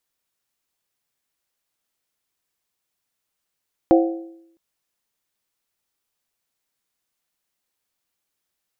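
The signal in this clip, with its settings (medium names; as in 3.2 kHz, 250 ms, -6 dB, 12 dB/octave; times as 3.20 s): skin hit length 0.66 s, lowest mode 332 Hz, modes 4, decay 0.78 s, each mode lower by 4 dB, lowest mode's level -9.5 dB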